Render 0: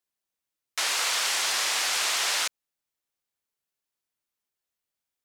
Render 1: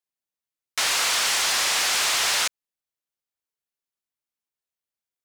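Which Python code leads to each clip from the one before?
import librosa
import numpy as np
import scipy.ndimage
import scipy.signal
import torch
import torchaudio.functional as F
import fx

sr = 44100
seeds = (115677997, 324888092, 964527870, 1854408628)

y = fx.leveller(x, sr, passes=2)
y = F.gain(torch.from_numpy(y), -1.5).numpy()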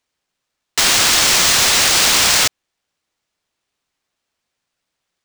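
y = fx.high_shelf(x, sr, hz=4700.0, db=11.0)
y = fx.sample_hold(y, sr, seeds[0], rate_hz=13000.0, jitter_pct=0)
y = F.gain(torch.from_numpy(y), 4.0).numpy()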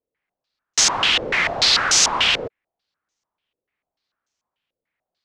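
y = fx.filter_held_lowpass(x, sr, hz=6.8, low_hz=480.0, high_hz=6300.0)
y = F.gain(torch.from_numpy(y), -7.0).numpy()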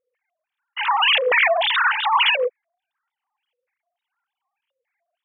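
y = fx.sine_speech(x, sr)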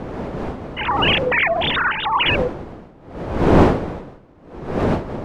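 y = fx.dmg_wind(x, sr, seeds[1], corner_hz=490.0, level_db=-21.0)
y = F.gain(torch.from_numpy(y), -1.0).numpy()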